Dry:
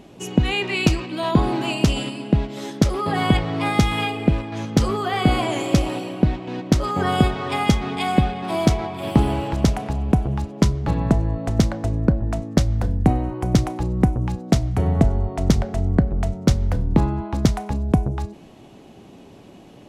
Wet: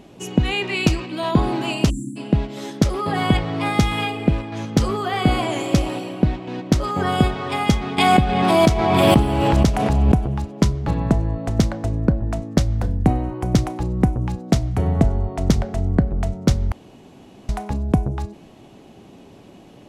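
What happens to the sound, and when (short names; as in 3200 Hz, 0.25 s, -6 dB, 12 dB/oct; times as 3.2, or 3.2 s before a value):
1.9–2.17 spectral delete 360–5800 Hz
7.98–10.45 backwards sustainer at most 22 dB/s
16.72–17.49 room tone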